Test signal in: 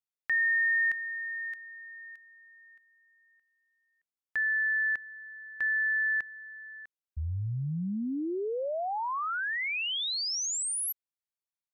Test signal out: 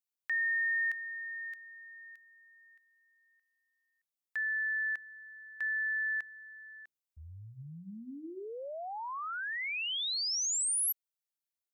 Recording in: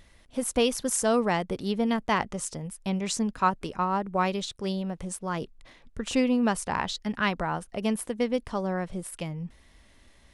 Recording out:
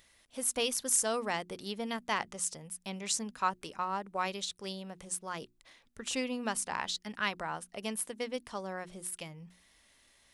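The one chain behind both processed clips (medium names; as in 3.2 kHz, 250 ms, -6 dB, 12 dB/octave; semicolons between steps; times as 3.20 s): tilt EQ +2.5 dB/octave; hum notches 60/120/180/240/300/360 Hz; trim -7 dB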